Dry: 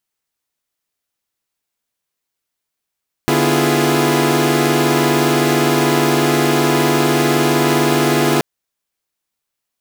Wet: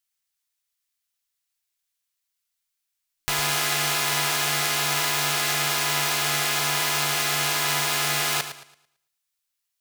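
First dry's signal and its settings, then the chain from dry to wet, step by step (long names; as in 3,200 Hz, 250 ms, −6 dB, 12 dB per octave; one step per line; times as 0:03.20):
held notes D3/B3/E4/F4/G#4 saw, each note −16.5 dBFS 5.13 s
guitar amp tone stack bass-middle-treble 10-0-10
feedback echo with a swinging delay time 111 ms, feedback 32%, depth 52 cents, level −10.5 dB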